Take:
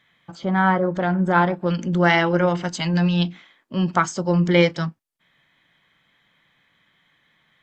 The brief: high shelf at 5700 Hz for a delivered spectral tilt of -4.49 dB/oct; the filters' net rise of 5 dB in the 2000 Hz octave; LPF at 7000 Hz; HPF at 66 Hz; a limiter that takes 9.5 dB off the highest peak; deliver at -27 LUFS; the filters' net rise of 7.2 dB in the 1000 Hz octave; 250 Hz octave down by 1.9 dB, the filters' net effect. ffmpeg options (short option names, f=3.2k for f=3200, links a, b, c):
-af "highpass=66,lowpass=7k,equalizer=f=250:t=o:g=-4,equalizer=f=1k:t=o:g=8.5,equalizer=f=2k:t=o:g=4,highshelf=f=5.7k:g=-7,volume=-6.5dB,alimiter=limit=-13dB:level=0:latency=1"